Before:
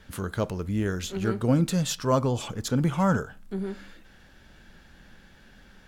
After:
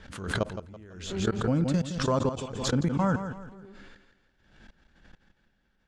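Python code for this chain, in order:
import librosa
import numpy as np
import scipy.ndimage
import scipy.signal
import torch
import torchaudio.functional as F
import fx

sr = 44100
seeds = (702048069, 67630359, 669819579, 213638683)

y = scipy.signal.sosfilt(scipy.signal.butter(4, 8600.0, 'lowpass', fs=sr, output='sos'), x)
y = fx.high_shelf(y, sr, hz=5100.0, db=-5.5)
y = fx.level_steps(y, sr, step_db=24)
y = fx.echo_feedback(y, sr, ms=166, feedback_pct=36, wet_db=-10.0)
y = fx.pre_swell(y, sr, db_per_s=64.0)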